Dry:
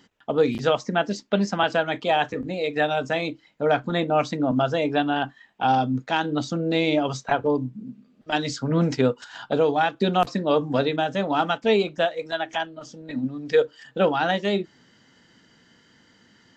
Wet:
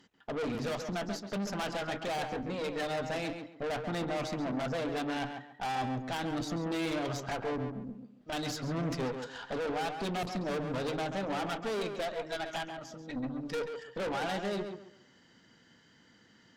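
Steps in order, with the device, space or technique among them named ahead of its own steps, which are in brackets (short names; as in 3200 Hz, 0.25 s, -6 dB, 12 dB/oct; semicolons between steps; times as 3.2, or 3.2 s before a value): rockabilly slapback (tube stage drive 29 dB, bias 0.6; tape echo 0.137 s, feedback 30%, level -4.5 dB, low-pass 2300 Hz); gain -3 dB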